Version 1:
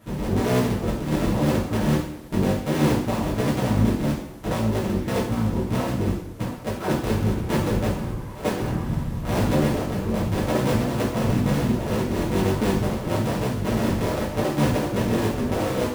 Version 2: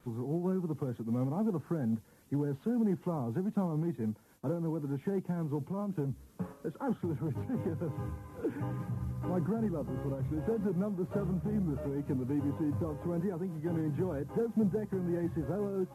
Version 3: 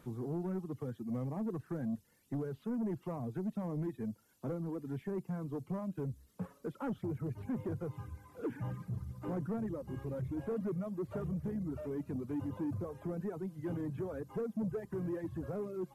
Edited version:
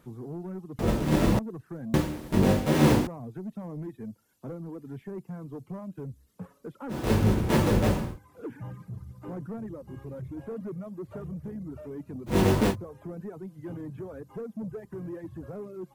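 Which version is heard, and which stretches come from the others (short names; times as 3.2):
3
0.79–1.39 from 1
1.94–3.07 from 1
7–8.08 from 1, crossfade 0.24 s
12.31–12.71 from 1, crossfade 0.10 s
not used: 2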